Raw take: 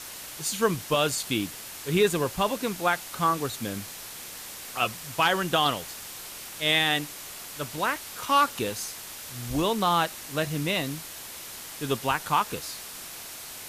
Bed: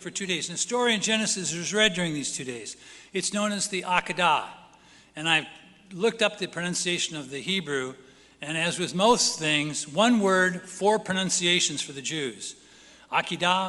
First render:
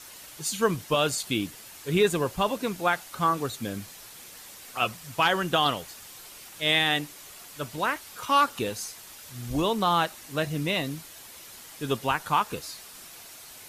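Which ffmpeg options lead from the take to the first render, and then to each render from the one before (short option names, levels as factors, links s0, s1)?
-af "afftdn=nr=7:nf=-41"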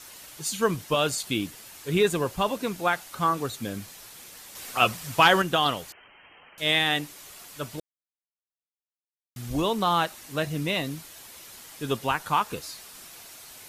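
-filter_complex "[0:a]asettb=1/sr,asplit=3[s0][s1][s2];[s0]atrim=end=4.554[s3];[s1]atrim=start=4.55:end=5.42,asetpts=PTS-STARTPTS,afade=t=in:d=0.004:c=qsin,afade=t=out:st=0.866:d=0.004:c=qsin,acontrast=39[s4];[s2]atrim=start=5.416[s5];[s3][s4]acrossfade=d=0.004:c1=hsin:c2=qsin[s6];[s6][s5]acrossfade=d=0.004:c1=qsin:c2=hsin,asettb=1/sr,asplit=3[s7][s8][s9];[s7]atrim=end=5.924[s10];[s8]atrim=start=5.92:end=6.58,asetpts=PTS-STARTPTS,afade=t=in:d=0.004:c=qsin,afade=t=out:st=0.656:d=0.004:c=qsin,lowpass=f=2700:t=q:w=0.5098,lowpass=f=2700:t=q:w=0.6013,lowpass=f=2700:t=q:w=0.9,lowpass=f=2700:t=q:w=2.563,afreqshift=-3200[s11];[s9]atrim=start=6.576[s12];[s10][s11]acrossfade=d=0.004:c1=hsin:c2=qsin[s13];[s13][s12]acrossfade=d=0.004:c1=qsin:c2=hsin,asplit=3[s14][s15][s16];[s14]atrim=end=7.8,asetpts=PTS-STARTPTS,afade=t=out:st=7.796:d=0.004:c=hsin[s17];[s15]atrim=start=7.8:end=9.36,asetpts=PTS-STARTPTS,volume=0[s18];[s16]atrim=start=9.36,asetpts=PTS-STARTPTS,afade=t=in:d=0.004:c=hsin[s19];[s17][s18][s19]concat=n=3:v=0:a=1"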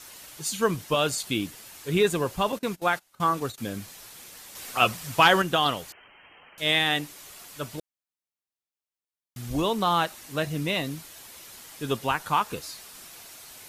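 -filter_complex "[0:a]asettb=1/sr,asplit=3[s0][s1][s2];[s0]atrim=end=2.524[s3];[s1]atrim=start=2.52:end=3.58,asetpts=PTS-STARTPTS,afade=t=in:d=0.004:c=qsin,afade=t=out:st=1.056:d=0.004:c=qsin,agate=range=0.0891:threshold=0.0158:ratio=16:release=100:detection=peak[s4];[s2]atrim=start=3.576[s5];[s3][s4]acrossfade=d=0.004:c1=hsin:c2=qsin[s6];[s6][s5]acrossfade=d=0.004:c1=qsin:c2=hsin"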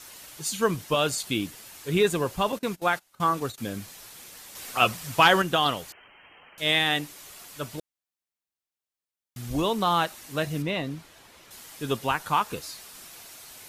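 -filter_complex "[0:a]asettb=1/sr,asplit=3[s0][s1][s2];[s0]atrim=end=10.624[s3];[s1]atrim=start=10.62:end=11.51,asetpts=PTS-STARTPTS,afade=t=in:d=0.004:c=qsin,afade=t=out:st=0.886:d=0.004:c=qsin,lowpass=f=2300:p=1[s4];[s2]atrim=start=11.506[s5];[s3][s4]acrossfade=d=0.004:c1=hsin:c2=qsin[s6];[s6][s5]acrossfade=d=0.004:c1=qsin:c2=hsin"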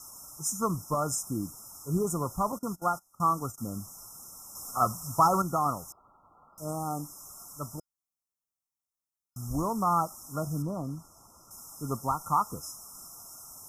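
-af "afftfilt=real='re*(1-between(b*sr/4096,1400,5100))':imag='im*(1-between(b*sr/4096,1400,5100))':win_size=4096:overlap=0.75,equalizer=f=450:t=o:w=1.1:g=-9.5"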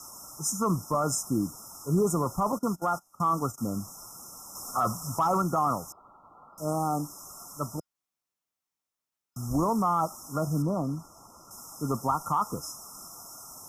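-filter_complex "[0:a]acrossover=split=140|5500[s0][s1][s2];[s1]acontrast=57[s3];[s0][s3][s2]amix=inputs=3:normalize=0,alimiter=limit=0.141:level=0:latency=1:release=11"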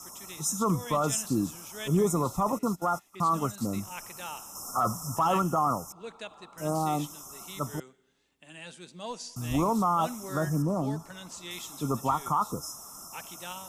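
-filter_complex "[1:a]volume=0.119[s0];[0:a][s0]amix=inputs=2:normalize=0"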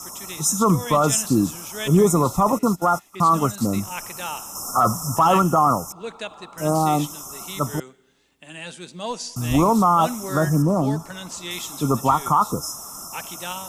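-af "volume=2.82"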